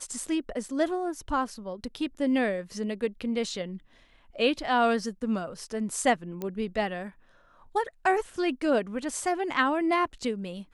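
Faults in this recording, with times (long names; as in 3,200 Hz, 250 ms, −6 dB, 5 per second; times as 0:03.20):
0:06.42: click −20 dBFS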